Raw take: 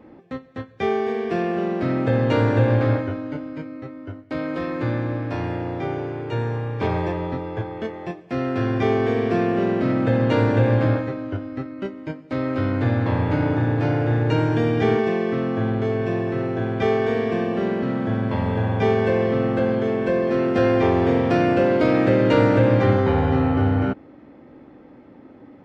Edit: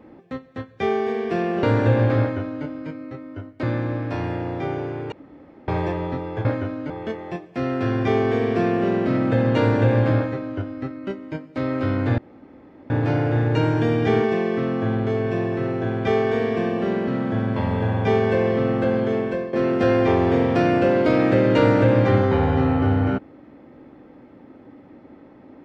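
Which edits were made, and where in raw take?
1.63–2.34 s: delete
2.91–3.36 s: copy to 7.65 s
4.34–4.83 s: delete
6.32–6.88 s: room tone
12.93–13.65 s: room tone
19.93–20.28 s: fade out, to -13.5 dB

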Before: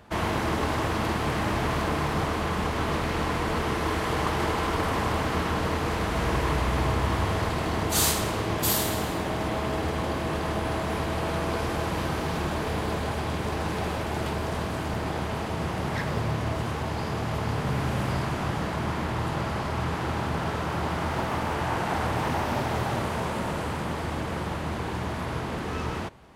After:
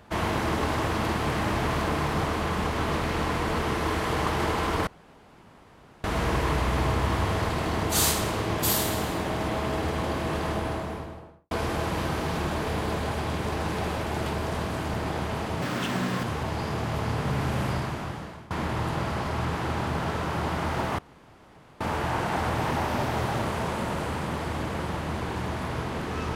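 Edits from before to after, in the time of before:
4.87–6.04 s: room tone
10.44–11.51 s: studio fade out
15.62–16.63 s: speed 164%
18.06–18.90 s: fade out, to -23.5 dB
21.38 s: insert room tone 0.82 s

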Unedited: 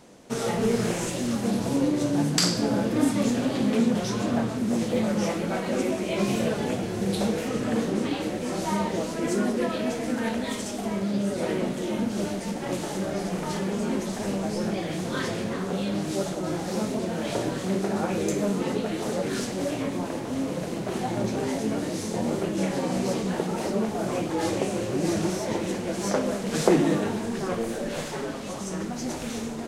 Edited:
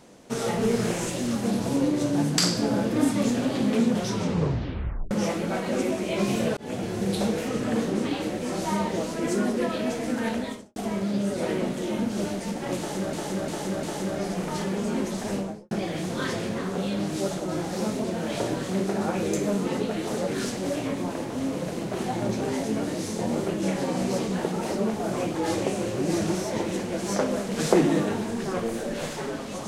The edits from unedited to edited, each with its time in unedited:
4.10 s: tape stop 1.01 s
6.57–6.92 s: fade in equal-power
10.36–10.76 s: studio fade out
12.78–13.13 s: loop, 4 plays
14.27–14.66 s: studio fade out

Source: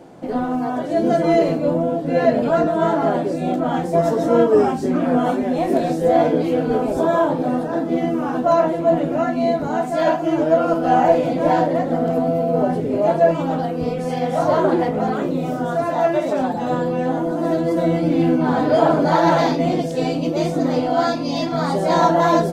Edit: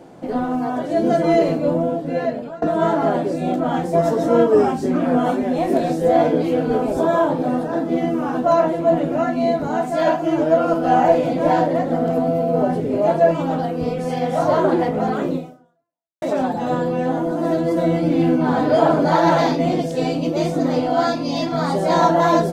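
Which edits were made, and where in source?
1.85–2.62 s: fade out, to -24 dB
15.35–16.22 s: fade out exponential

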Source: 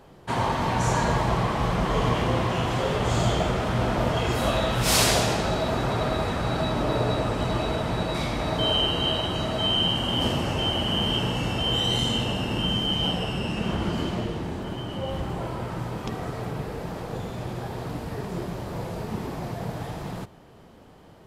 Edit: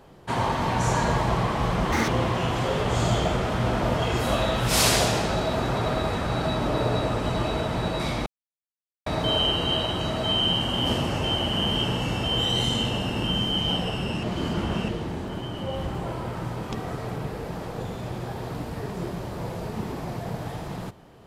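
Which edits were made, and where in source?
1.92–2.23 s: speed 191%
8.41 s: insert silence 0.80 s
13.58–14.23 s: reverse

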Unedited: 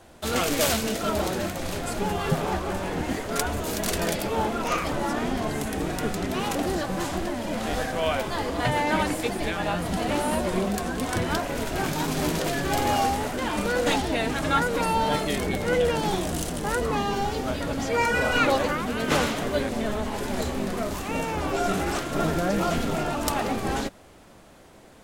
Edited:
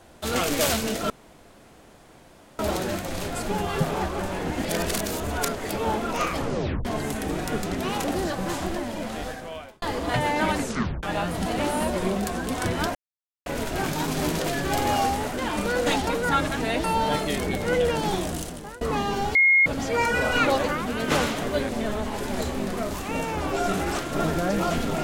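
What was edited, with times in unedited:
1.10 s: insert room tone 1.49 s
3.15–4.20 s: reverse
4.89 s: tape stop 0.47 s
7.29–8.33 s: fade out
9.09 s: tape stop 0.45 s
11.46 s: insert silence 0.51 s
14.07–14.84 s: reverse
16.23–16.81 s: fade out, to -22.5 dB
17.35–17.66 s: bleep 2.15 kHz -14 dBFS

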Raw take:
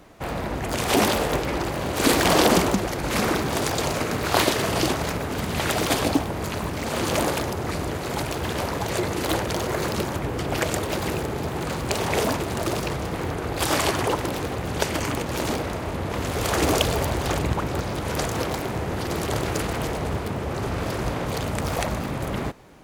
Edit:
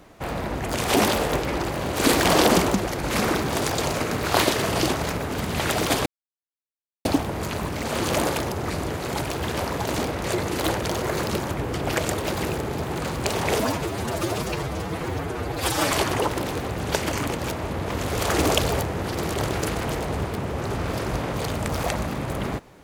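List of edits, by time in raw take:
6.06 s: insert silence 0.99 s
12.25–13.80 s: stretch 1.5×
15.39–15.75 s: move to 8.89 s
17.06–18.75 s: delete

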